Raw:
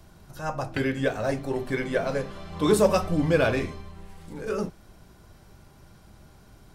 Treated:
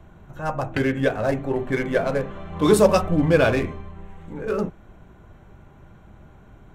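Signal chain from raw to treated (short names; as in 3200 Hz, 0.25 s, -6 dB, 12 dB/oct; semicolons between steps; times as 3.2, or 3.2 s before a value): Wiener smoothing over 9 samples; gain +4.5 dB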